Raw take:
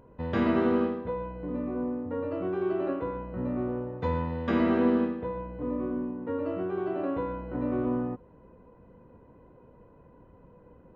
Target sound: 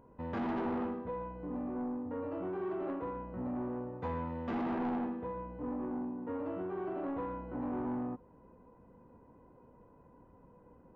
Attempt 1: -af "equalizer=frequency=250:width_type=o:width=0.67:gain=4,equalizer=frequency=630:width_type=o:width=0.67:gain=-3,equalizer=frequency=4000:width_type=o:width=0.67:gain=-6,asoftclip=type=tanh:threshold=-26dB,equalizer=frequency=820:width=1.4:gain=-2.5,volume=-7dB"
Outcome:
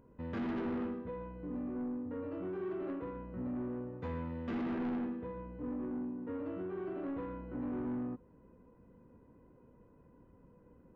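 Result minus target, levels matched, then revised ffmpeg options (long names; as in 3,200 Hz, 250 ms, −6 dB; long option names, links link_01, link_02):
1,000 Hz band −6.0 dB
-af "equalizer=frequency=250:width_type=o:width=0.67:gain=4,equalizer=frequency=630:width_type=o:width=0.67:gain=-3,equalizer=frequency=4000:width_type=o:width=0.67:gain=-6,asoftclip=type=tanh:threshold=-26dB,equalizer=frequency=820:width=1.4:gain=7,volume=-7dB"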